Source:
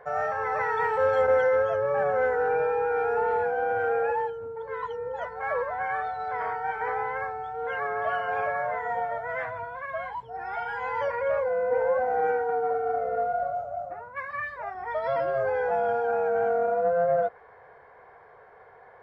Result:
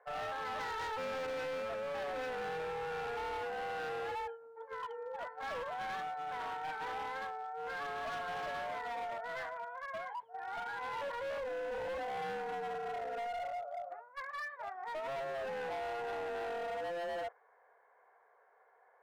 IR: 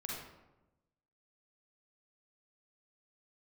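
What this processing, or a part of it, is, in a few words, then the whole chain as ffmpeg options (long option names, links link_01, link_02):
walkie-talkie: -af "highpass=530,lowpass=2500,asoftclip=type=hard:threshold=-30.5dB,agate=range=-7dB:threshold=-39dB:ratio=16:detection=peak,volume=-6.5dB"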